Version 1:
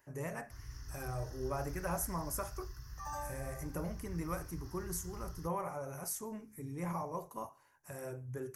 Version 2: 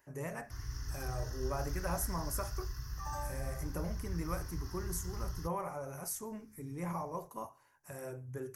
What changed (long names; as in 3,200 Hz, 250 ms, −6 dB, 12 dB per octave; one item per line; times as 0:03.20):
speech: add mains-hum notches 60/120 Hz
first sound +6.5 dB